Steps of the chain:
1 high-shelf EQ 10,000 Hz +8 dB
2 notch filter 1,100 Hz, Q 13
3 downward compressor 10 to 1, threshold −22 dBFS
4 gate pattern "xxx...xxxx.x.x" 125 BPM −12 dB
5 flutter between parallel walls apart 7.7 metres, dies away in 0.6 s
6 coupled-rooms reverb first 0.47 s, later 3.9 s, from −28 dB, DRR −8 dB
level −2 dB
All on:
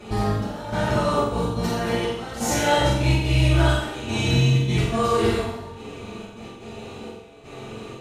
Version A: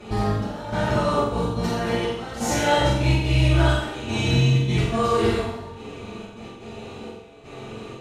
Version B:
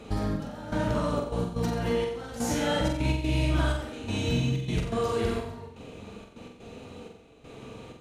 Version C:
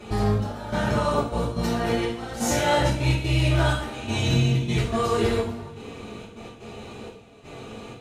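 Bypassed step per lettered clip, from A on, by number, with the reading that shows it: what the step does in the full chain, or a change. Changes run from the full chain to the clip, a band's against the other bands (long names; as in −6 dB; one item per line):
1, 8 kHz band −2.0 dB
6, echo-to-direct ratio 10.0 dB to −2.5 dB
5, echo-to-direct ratio 10.0 dB to 8.0 dB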